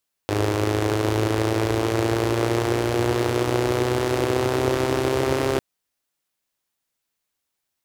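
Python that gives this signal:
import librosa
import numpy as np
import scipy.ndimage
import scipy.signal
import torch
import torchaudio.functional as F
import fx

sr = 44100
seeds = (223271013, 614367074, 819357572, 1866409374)

y = fx.engine_four_rev(sr, seeds[0], length_s=5.3, rpm=3100, resonances_hz=(100.0, 350.0), end_rpm=4000)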